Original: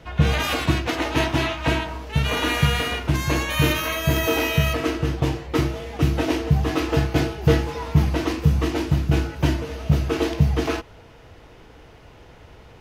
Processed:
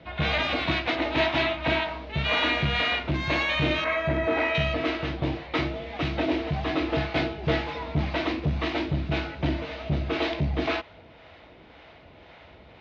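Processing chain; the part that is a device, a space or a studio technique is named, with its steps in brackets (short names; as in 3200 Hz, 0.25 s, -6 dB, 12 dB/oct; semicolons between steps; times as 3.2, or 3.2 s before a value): 3.84–4.55 band shelf 4600 Hz -12.5 dB; guitar amplifier with harmonic tremolo (harmonic tremolo 1.9 Hz, depth 50%, crossover 550 Hz; soft clip -15.5 dBFS, distortion -13 dB; speaker cabinet 78–4300 Hz, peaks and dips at 120 Hz -9 dB, 440 Hz -5 dB, 630 Hz +6 dB, 2200 Hz +6 dB, 3800 Hz +6 dB)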